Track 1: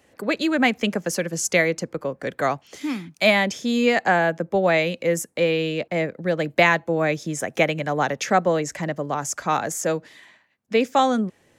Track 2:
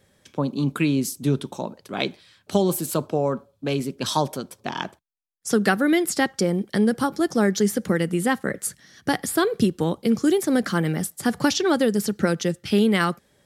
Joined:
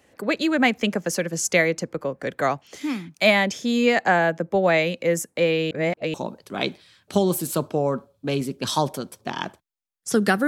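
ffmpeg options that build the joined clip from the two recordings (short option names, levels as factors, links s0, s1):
-filter_complex "[0:a]apad=whole_dur=10.47,atrim=end=10.47,asplit=2[s0][s1];[s0]atrim=end=5.712[s2];[s1]atrim=start=5.708:end=6.142,asetpts=PTS-STARTPTS,areverse[s3];[1:a]atrim=start=1.528:end=5.86[s4];[s2][s3]acrossfade=d=0.004:c1=hsin:c2=hsin[s5];[s5][s4]acrossfade=d=0.004:c1=hsin:c2=hsin"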